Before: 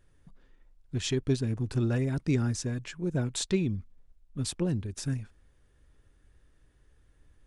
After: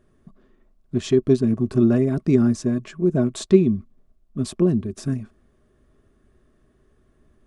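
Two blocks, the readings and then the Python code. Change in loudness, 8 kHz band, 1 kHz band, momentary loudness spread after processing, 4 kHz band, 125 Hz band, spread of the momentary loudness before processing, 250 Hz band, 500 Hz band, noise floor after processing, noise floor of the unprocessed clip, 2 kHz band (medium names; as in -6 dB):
+10.0 dB, -1.0 dB, +6.5 dB, 11 LU, -0.5 dB, +5.0 dB, 8 LU, +12.0 dB, +13.5 dB, -62 dBFS, -65 dBFS, +1.0 dB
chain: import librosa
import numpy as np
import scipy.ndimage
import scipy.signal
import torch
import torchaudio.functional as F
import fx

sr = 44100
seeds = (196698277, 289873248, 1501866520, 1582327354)

y = fx.small_body(x, sr, hz=(230.0, 370.0, 620.0, 1100.0), ring_ms=40, db=16)
y = F.gain(torch.from_numpy(y), -1.0).numpy()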